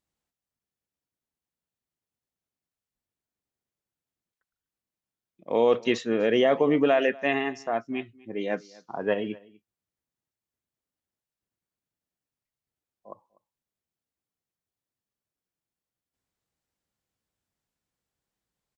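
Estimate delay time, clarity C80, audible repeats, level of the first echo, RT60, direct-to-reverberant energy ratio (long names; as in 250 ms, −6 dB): 246 ms, no reverb audible, 1, −23.5 dB, no reverb audible, no reverb audible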